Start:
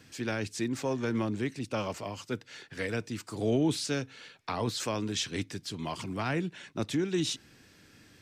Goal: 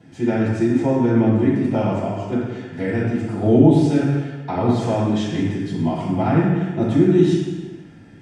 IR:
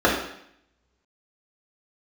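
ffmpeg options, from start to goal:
-filter_complex "[1:a]atrim=start_sample=2205,afade=t=out:st=0.4:d=0.01,atrim=end_sample=18081,asetrate=22491,aresample=44100[a];[0:a][a]afir=irnorm=-1:irlink=0,volume=-14.5dB"

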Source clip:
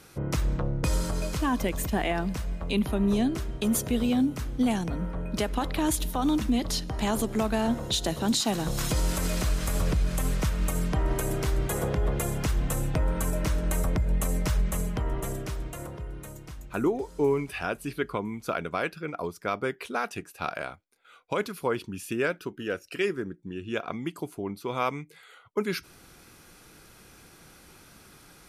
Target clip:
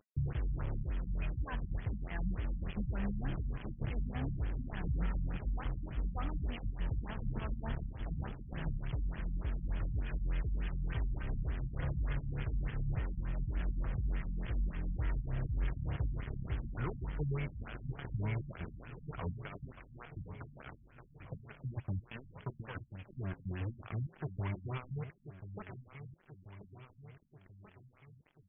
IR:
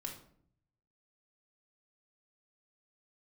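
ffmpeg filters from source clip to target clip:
-filter_complex "[0:a]firequalizer=gain_entry='entry(110,0);entry(250,-29);entry(1700,4)':delay=0.05:min_phase=1,areverse,acompressor=threshold=-33dB:ratio=6,areverse,alimiter=level_in=9dB:limit=-24dB:level=0:latency=1:release=17,volume=-9dB,acrossover=split=150|920[a][b][c];[a]acompressor=threshold=-45dB:ratio=4[d];[b]acompressor=threshold=-46dB:ratio=4[e];[c]acompressor=threshold=-60dB:ratio=4[f];[d][e][f]amix=inputs=3:normalize=0,aeval=exprs='val(0)*gte(abs(val(0)),0.00398)':c=same,flanger=delay=2.3:depth=7.1:regen=-82:speed=0.19:shape=sinusoidal,asplit=2[g][h];[h]aecho=0:1:1036|2072|3108|4144|5180|6216|7252:0.282|0.163|0.0948|0.055|0.0319|0.0185|0.0107[i];[g][i]amix=inputs=2:normalize=0,afftfilt=real='re*lt(b*sr/1024,240*pow(3500/240,0.5+0.5*sin(2*PI*3.4*pts/sr)))':imag='im*lt(b*sr/1024,240*pow(3500/240,0.5+0.5*sin(2*PI*3.4*pts/sr)))':win_size=1024:overlap=0.75,volume=15dB"

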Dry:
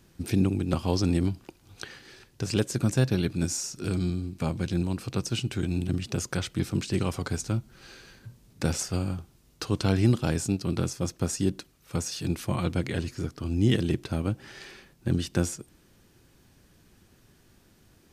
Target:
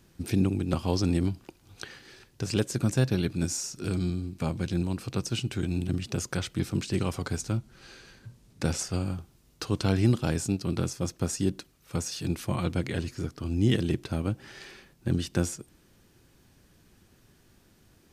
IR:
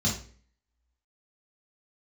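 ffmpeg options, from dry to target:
-filter_complex "[0:a]asettb=1/sr,asplit=3[a][b][c];[a]atrim=end=7.574[d];[b]atrim=start=7.57:end=9.05,asetpts=PTS-STARTPTS,afade=t=in:d=0.004:c=qsin,afade=t=out:st=1.476:d=0.004:c=qsin,lowpass=12k[e];[c]atrim=start=9.046[f];[d][e]acrossfade=d=0.004:c1=hsin:c2=qsin[g];[g][f]acrossfade=d=0.004:c1=qsin:c2=hsin,volume=-1dB"

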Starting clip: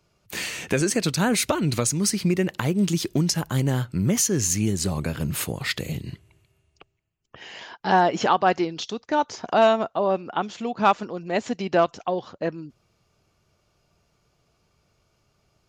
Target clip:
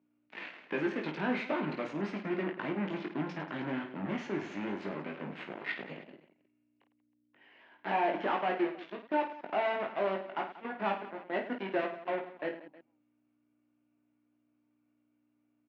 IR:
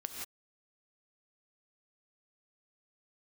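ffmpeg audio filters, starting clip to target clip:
-af "aeval=exprs='val(0)+0.00501*(sin(2*PI*60*n/s)+sin(2*PI*2*60*n/s)/2+sin(2*PI*3*60*n/s)/3+sin(2*PI*4*60*n/s)/4+sin(2*PI*5*60*n/s)/5)':c=same,volume=16.5dB,asoftclip=hard,volume=-16.5dB,aeval=exprs='0.158*(cos(1*acos(clip(val(0)/0.158,-1,1)))-cos(1*PI/2))+0.0316*(cos(7*acos(clip(val(0)/0.158,-1,1)))-cos(7*PI/2))':c=same,highpass=f=220:w=0.5412,highpass=f=220:w=1.3066,equalizer=f=220:t=q:w=4:g=-4,equalizer=f=460:t=q:w=4:g=-6,equalizer=f=780:t=q:w=4:g=-3,equalizer=f=1.2k:t=q:w=4:g=-5,lowpass=f=2.5k:w=0.5412,lowpass=f=2.5k:w=1.3066,aecho=1:1:20|52|103.2|185.1|316.2:0.631|0.398|0.251|0.158|0.1,volume=-7.5dB"

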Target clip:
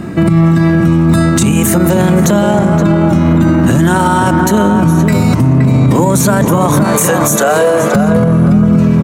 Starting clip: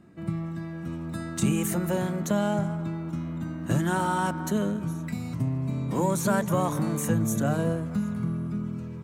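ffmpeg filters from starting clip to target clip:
-filter_complex "[0:a]asettb=1/sr,asplit=3[a][b][c];[a]atrim=end=6.844[d];[b]atrim=start=6.84:end=7.95,asetpts=PTS-STARTPTS,afade=t=in:d=0.004:c=qsin,afade=t=out:st=1.106:d=0.004:c=qsin,highpass=f=450:w=0.5412,highpass=f=450:w=1.3066[e];[c]atrim=start=7.946[f];[d][e]acrossfade=d=0.004:c1=hsin:c2=qsin[g];[g][f]acrossfade=d=0.004:c1=qsin:c2=hsin,acompressor=threshold=-32dB:ratio=6,asplit=2[h][i];[i]adelay=521,lowpass=f=1.2k:p=1,volume=-4.5dB,asplit=2[j][k];[k]adelay=521,lowpass=f=1.2k:p=1,volume=0.35,asplit=2[l][m];[m]adelay=521,lowpass=f=1.2k:p=1,volume=0.35,asplit=2[n][o];[o]adelay=521,lowpass=f=1.2k:p=1,volume=0.35[p];[h][j][l][n][p]amix=inputs=5:normalize=0,alimiter=level_in=32.5dB:limit=-1dB:release=50:level=0:latency=1,volume=-1dB"

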